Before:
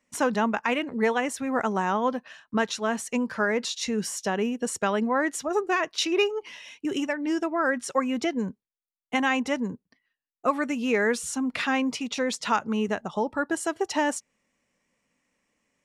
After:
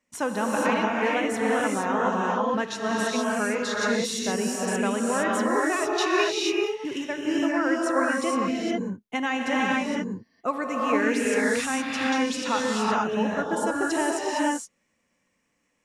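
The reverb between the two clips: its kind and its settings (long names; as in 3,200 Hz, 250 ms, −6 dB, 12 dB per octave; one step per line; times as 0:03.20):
reverb whose tail is shaped and stops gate 490 ms rising, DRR −4 dB
level −3.5 dB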